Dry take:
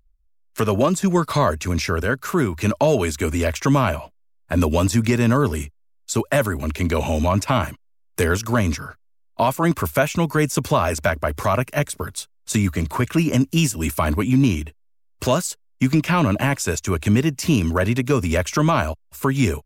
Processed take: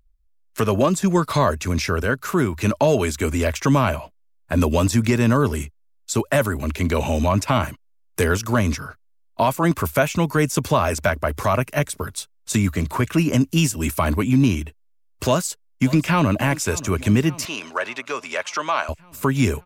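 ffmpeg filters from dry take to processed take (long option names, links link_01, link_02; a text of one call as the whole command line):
ffmpeg -i in.wav -filter_complex "[0:a]asplit=2[link_01][link_02];[link_02]afade=type=in:start_time=15.23:duration=0.01,afade=type=out:start_time=16.36:duration=0.01,aecho=0:1:580|1160|1740|2320|2900|3480|4060:0.133352|0.0866789|0.0563413|0.0366218|0.0238042|0.0154727|0.0100573[link_03];[link_01][link_03]amix=inputs=2:normalize=0,asettb=1/sr,asplit=3[link_04][link_05][link_06];[link_04]atrim=end=17.454[link_07];[link_05]atrim=start=17.45:end=18.89,asetpts=PTS-STARTPTS,afade=type=in:duration=0.004:curve=qsin,afade=type=out:start_time=1.436:duration=0.004:curve=qsin,highpass=730,lowpass=5700[link_08];[link_06]atrim=start=18.886[link_09];[link_07][link_08]acrossfade=duration=0.004:curve1=hsin:curve2=qsin[link_10];[link_10][link_09]acrossfade=duration=0.004:curve1=qsin:curve2=hsin" out.wav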